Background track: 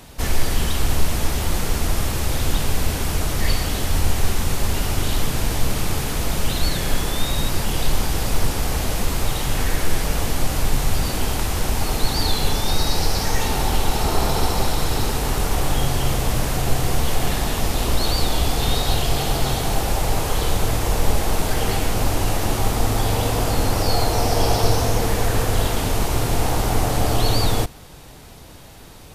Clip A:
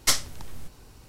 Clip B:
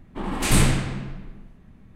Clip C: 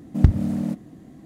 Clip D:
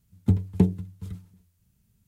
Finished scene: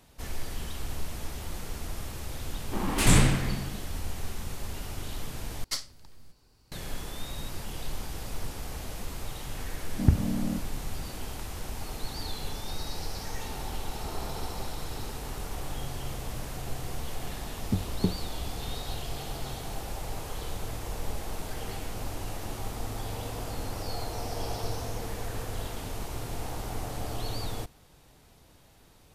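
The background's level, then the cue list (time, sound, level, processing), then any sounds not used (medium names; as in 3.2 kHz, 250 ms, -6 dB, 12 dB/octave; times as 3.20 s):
background track -15.5 dB
2.56 s: add B -2 dB + warped record 78 rpm, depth 160 cents
5.64 s: replace with A -13.5 dB + peaking EQ 4.6 kHz +9.5 dB 0.27 oct
9.84 s: add C -5 dB + elliptic low-pass 1.9 kHz
17.44 s: add D -4.5 dB + harmonic-percussive split harmonic -8 dB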